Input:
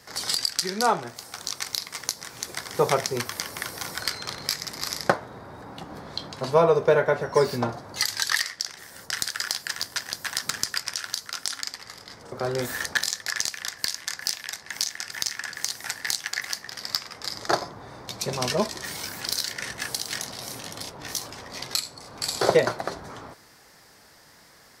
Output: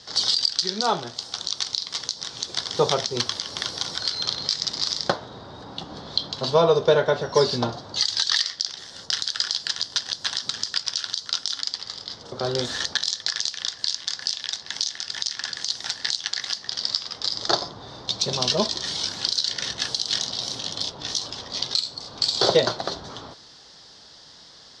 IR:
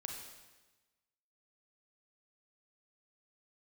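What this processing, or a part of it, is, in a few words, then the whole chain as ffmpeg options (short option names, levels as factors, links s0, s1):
over-bright horn tweeter: -af "highshelf=f=2800:t=q:w=3:g=6.5,alimiter=limit=0.447:level=0:latency=1:release=135,lowpass=f=5800:w=0.5412,lowpass=f=5800:w=1.3066,volume=1.19"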